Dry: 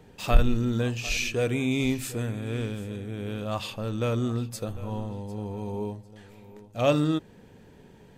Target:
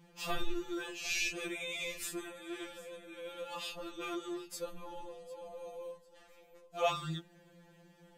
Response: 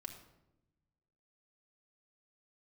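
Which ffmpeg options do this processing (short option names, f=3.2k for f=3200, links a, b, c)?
-af "lowshelf=f=250:g=-7.5,afftfilt=real='re*2.83*eq(mod(b,8),0)':imag='im*2.83*eq(mod(b,8),0)':win_size=2048:overlap=0.75,volume=-2.5dB"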